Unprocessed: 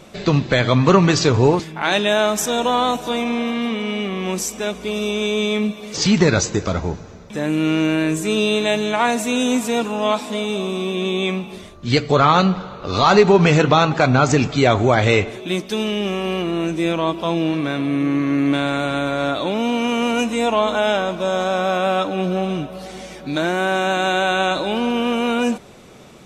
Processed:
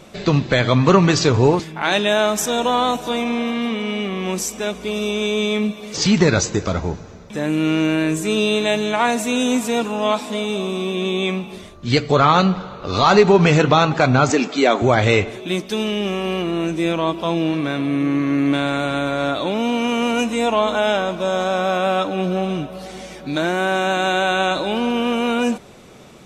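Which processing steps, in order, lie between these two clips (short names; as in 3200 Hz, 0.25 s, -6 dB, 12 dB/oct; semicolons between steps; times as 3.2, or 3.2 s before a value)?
14.3–14.82 steep high-pass 210 Hz 36 dB/oct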